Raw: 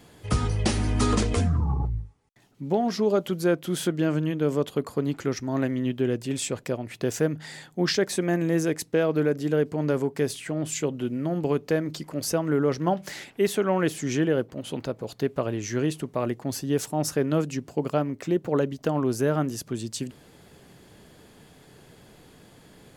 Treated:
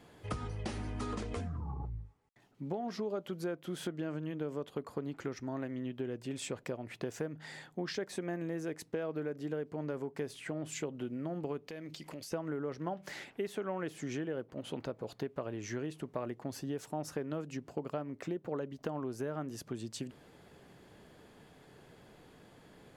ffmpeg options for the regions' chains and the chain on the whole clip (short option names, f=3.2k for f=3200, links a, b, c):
-filter_complex "[0:a]asettb=1/sr,asplit=3[a][b][c];[a]atrim=end=11.674[d];[b]atrim=start=11.67:end=12.32,asetpts=PTS-STARTPTS,afade=t=in:d=0.004:c=qsin,afade=t=out:st=0.646:d=0.004:c=qsin,highshelf=f=1.8k:t=q:w=1.5:g=7.5,acompressor=threshold=-35dB:ratio=6:attack=3.2:release=140:knee=1:detection=peak[e];[c]atrim=start=12.316[f];[d][e]acrossfade=d=0.004:c1=hsin:c2=qsin[g];[g][f]acrossfade=d=0.004:c1=qsin:c2=hsin,highshelf=f=3.3k:g=-10.5,acompressor=threshold=-29dB:ratio=6,lowshelf=f=340:g=-5.5,volume=-2.5dB"